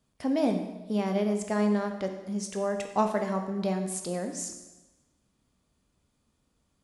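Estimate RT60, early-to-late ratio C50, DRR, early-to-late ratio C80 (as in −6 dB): 1.1 s, 7.5 dB, 4.5 dB, 9.0 dB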